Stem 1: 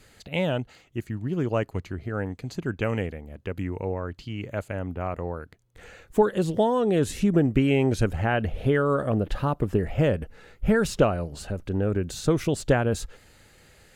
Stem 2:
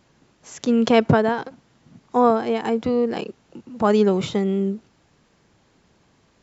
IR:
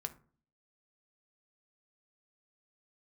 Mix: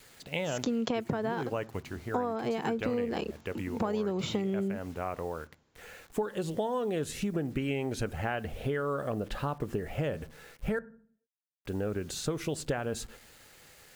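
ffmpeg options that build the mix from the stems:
-filter_complex "[0:a]acrusher=bits=8:mix=0:aa=0.000001,lowshelf=f=260:g=-8,volume=-4.5dB,asplit=3[a][b][c];[a]atrim=end=10.79,asetpts=PTS-STARTPTS,afade=t=out:st=10.786:d=0.004:c=hsin[d];[b]atrim=start=10.79:end=11.65,asetpts=PTS-STARTPTS,volume=0[e];[c]atrim=start=11.65,asetpts=PTS-STARTPTS,afade=t=in:d=0.004:c=hsin[f];[d][e][f]concat=n=3:v=0:a=1,asplit=2[g][h];[h]volume=-4dB[i];[1:a]agate=range=-33dB:threshold=-51dB:ratio=3:detection=peak,acompressor=threshold=-18dB:ratio=6,volume=0dB[j];[2:a]atrim=start_sample=2205[k];[i][k]afir=irnorm=-1:irlink=0[l];[g][j][l]amix=inputs=3:normalize=0,acompressor=threshold=-29dB:ratio=4"

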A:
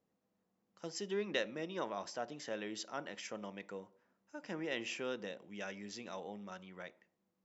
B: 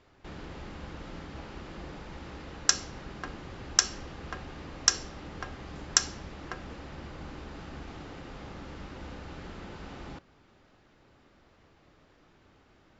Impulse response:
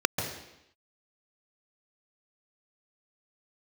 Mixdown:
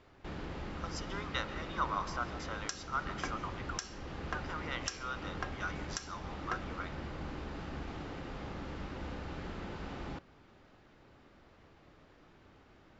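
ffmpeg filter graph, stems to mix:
-filter_complex "[0:a]highpass=f=1.2k:t=q:w=4,bandreject=f=1.7k:w=7,volume=1dB,asplit=2[a][b];[b]volume=-18dB[c];[1:a]volume=1dB[d];[2:a]atrim=start_sample=2205[e];[c][e]afir=irnorm=-1:irlink=0[f];[a][d][f]amix=inputs=3:normalize=0,highshelf=f=5.8k:g=-7.5,alimiter=limit=-20dB:level=0:latency=1:release=369"

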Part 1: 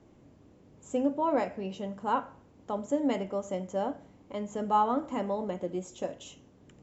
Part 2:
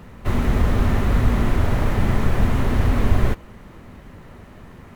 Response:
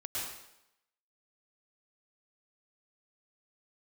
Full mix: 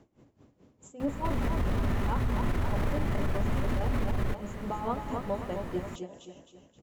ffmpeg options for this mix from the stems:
-filter_complex "[0:a]aeval=exprs='val(0)*pow(10,-21*(0.5-0.5*cos(2*PI*4.7*n/s))/20)':c=same,volume=1.5dB,asplit=3[a][b][c];[b]volume=-23.5dB[d];[c]volume=-6dB[e];[1:a]acompressor=threshold=-22dB:ratio=6,adelay=1000,volume=2.5dB[f];[2:a]atrim=start_sample=2205[g];[d][g]afir=irnorm=-1:irlink=0[h];[e]aecho=0:1:264|528|792|1056|1320|1584:1|0.4|0.16|0.064|0.0256|0.0102[i];[a][f][h][i]amix=inputs=4:normalize=0,alimiter=limit=-21dB:level=0:latency=1:release=24"

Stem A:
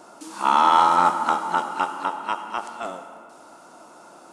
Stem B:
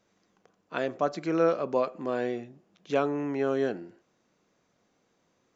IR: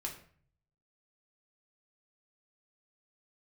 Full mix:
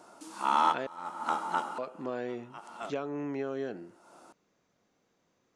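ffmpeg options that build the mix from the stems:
-filter_complex "[0:a]volume=-8dB[a];[1:a]acompressor=threshold=-27dB:ratio=10,volume=-3dB,asplit=3[b][c][d];[b]atrim=end=0.87,asetpts=PTS-STARTPTS,afade=t=out:st=0.866:d=0.004:c=hsin[e];[c]atrim=start=0.87:end=1.78,asetpts=PTS-STARTPTS,volume=0[f];[d]atrim=start=1.78,asetpts=PTS-STARTPTS,afade=t=in:d=0.004:c=hsin[g];[e][f][g]concat=n=3:v=0:a=1,asplit=2[h][i];[i]apad=whole_len=190692[j];[a][j]sidechaincompress=threshold=-53dB:ratio=12:attack=6:release=295[k];[k][h]amix=inputs=2:normalize=0"

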